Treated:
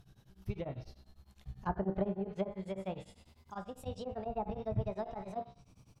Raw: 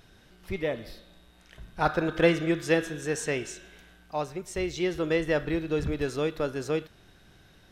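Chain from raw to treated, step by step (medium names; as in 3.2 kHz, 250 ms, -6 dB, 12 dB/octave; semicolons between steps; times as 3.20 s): gliding tape speed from 102% -> 155%; feedback comb 64 Hz, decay 0.46 s, harmonics all, mix 70%; on a send: delay 73 ms -13.5 dB; on the sum: low-pass that closes with the level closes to 850 Hz, closed at -28 dBFS; graphic EQ 125/250/500/2000/4000/8000 Hz +10/-4/-6/-12/-4/-4 dB; tremolo of two beating tones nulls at 10 Hz; trim +3.5 dB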